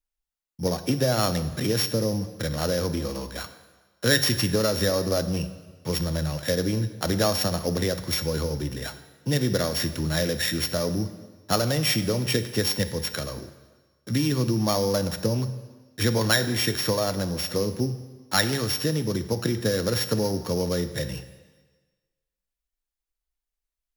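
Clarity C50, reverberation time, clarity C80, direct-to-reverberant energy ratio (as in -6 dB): 12.5 dB, 1.4 s, 14.0 dB, 10.0 dB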